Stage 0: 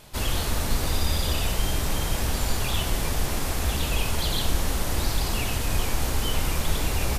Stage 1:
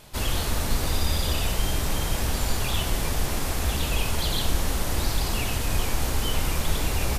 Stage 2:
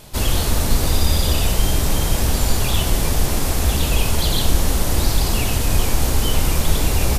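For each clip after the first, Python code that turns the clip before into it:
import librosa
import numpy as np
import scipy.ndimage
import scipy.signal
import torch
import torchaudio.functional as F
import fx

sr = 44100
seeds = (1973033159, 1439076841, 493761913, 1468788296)

y1 = x
y2 = fx.peak_eq(y1, sr, hz=1700.0, db=-4.5, octaves=2.4)
y2 = F.gain(torch.from_numpy(y2), 8.0).numpy()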